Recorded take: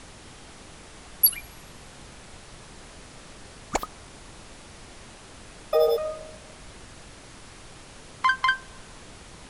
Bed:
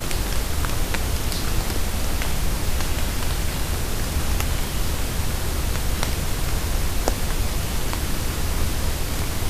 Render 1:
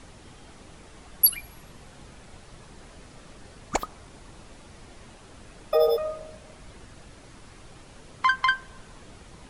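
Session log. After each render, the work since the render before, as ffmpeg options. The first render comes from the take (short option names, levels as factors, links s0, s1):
-af "afftdn=nr=6:nf=-47"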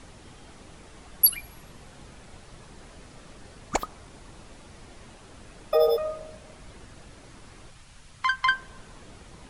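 -filter_complex "[0:a]asettb=1/sr,asplit=3[s0][s1][s2];[s0]atrim=end=7.704[s3];[s1]atrim=start=7.7:end=8.45,asetpts=PTS-STARTPTS,afade=t=in:d=0.004:c=qsin,afade=t=out:st=0.746:d=0.004:c=qsin,equalizer=f=400:t=o:w=2:g=-13[s4];[s2]atrim=start=8.446[s5];[s3][s4]acrossfade=d=0.004:c1=hsin:c2=qsin[s6];[s6][s5]acrossfade=d=0.004:c1=qsin:c2=hsin"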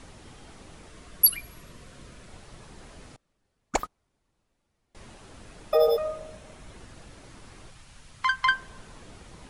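-filter_complex "[0:a]asettb=1/sr,asplit=3[s0][s1][s2];[s0]atrim=end=0.894[s3];[s1]atrim=start=0.89:end=2.29,asetpts=PTS-STARTPTS,afade=t=in:d=0.004:c=qsin,afade=t=out:st=1.396:d=0.004:c=qsin,asuperstop=centerf=820:order=4:qfactor=4.6[s4];[s2]atrim=start=2.286[s5];[s3][s4]acrossfade=d=0.004:c1=hsin:c2=qsin[s6];[s6][s5]acrossfade=d=0.004:c1=qsin:c2=hsin,asettb=1/sr,asplit=3[s7][s8][s9];[s7]atrim=end=3.164[s10];[s8]atrim=start=3.16:end=4.95,asetpts=PTS-STARTPTS,afade=t=in:d=0.004:c=qsin,afade=t=out:st=1.786:d=0.004:c=qsin,agate=range=0.0355:threshold=0.0158:ratio=16:release=100:detection=peak[s11];[s9]atrim=start=4.946[s12];[s10][s11]acrossfade=d=0.004:c1=hsin:c2=qsin[s13];[s13][s12]acrossfade=d=0.004:c1=qsin:c2=hsin,asettb=1/sr,asplit=3[s14][s15][s16];[s14]atrim=end=6.074[s17];[s15]atrim=start=6.07:end=6.76,asetpts=PTS-STARTPTS,afade=t=in:d=0.004:c=qsin,afade=t=out:st=0.686:d=0.004:c=qsin,bandreject=f=4700:w=12[s18];[s16]atrim=start=6.756[s19];[s17][s18]acrossfade=d=0.004:c1=hsin:c2=qsin[s20];[s20][s19]acrossfade=d=0.004:c1=qsin:c2=hsin"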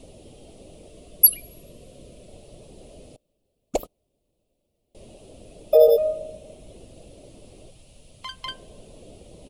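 -af "firequalizer=gain_entry='entry(140,0);entry(600,9);entry(870,-10);entry(1600,-22);entry(2700,-1);entry(6000,-5);entry(13000,8)':delay=0.05:min_phase=1"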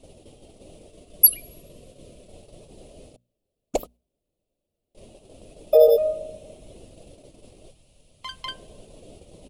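-af "agate=range=0.447:threshold=0.00501:ratio=16:detection=peak,bandreject=f=60:t=h:w=6,bandreject=f=120:t=h:w=6,bandreject=f=180:t=h:w=6,bandreject=f=240:t=h:w=6"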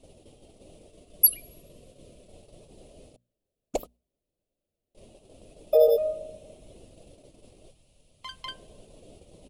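-af "volume=0.596"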